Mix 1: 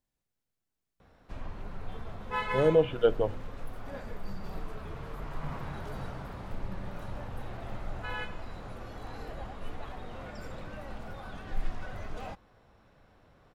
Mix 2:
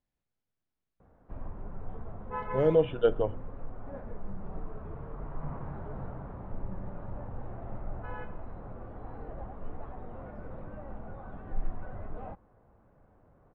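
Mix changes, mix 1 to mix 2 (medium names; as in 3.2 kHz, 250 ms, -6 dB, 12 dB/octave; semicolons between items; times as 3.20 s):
background: add low-pass 1.1 kHz 12 dB/octave; master: add distance through air 180 m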